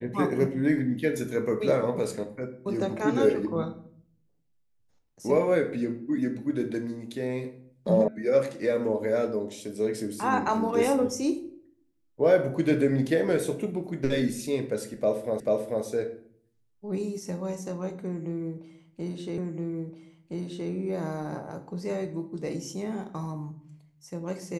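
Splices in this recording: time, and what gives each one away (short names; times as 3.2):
8.08 sound cut off
15.4 repeat of the last 0.44 s
19.38 repeat of the last 1.32 s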